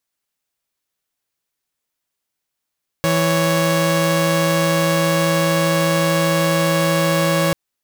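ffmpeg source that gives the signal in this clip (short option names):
-f lavfi -i "aevalsrc='0.178*((2*mod(164.81*t,1)-1)+(2*mod(554.37*t,1)-1))':d=4.49:s=44100"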